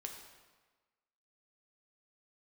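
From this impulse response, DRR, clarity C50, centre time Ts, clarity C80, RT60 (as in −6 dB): 2.0 dB, 5.0 dB, 38 ms, 7.0 dB, 1.3 s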